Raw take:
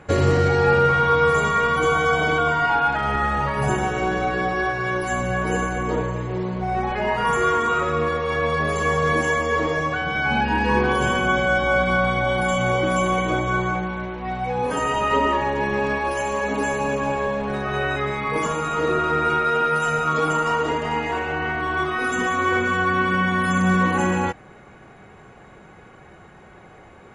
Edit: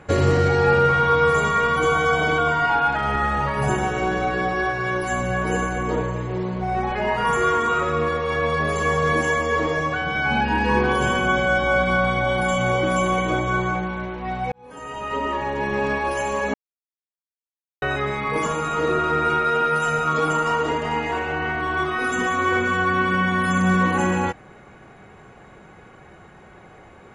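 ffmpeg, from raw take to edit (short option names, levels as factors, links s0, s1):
-filter_complex "[0:a]asplit=4[s0][s1][s2][s3];[s0]atrim=end=14.52,asetpts=PTS-STARTPTS,afade=t=out:st=14.516:d=0.004:c=hsin[s4];[s1]atrim=start=14.52:end=16.54,asetpts=PTS-STARTPTS,afade=t=in:d=1.34,afade=t=out:st=2.016:d=0.004:c=hsin[s5];[s2]atrim=start=16.54:end=17.82,asetpts=PTS-STARTPTS,volume=0[s6];[s3]atrim=start=17.82,asetpts=PTS-STARTPTS,afade=t=in:d=0.004:c=hsin[s7];[s4][s5][s6][s7]concat=n=4:v=0:a=1"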